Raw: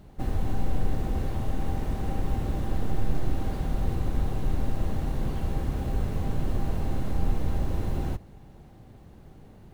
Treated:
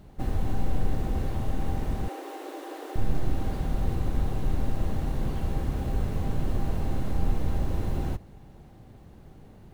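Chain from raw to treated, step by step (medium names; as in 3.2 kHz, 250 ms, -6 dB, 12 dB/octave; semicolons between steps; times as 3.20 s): 2.08–2.96 s: brick-wall FIR high-pass 280 Hz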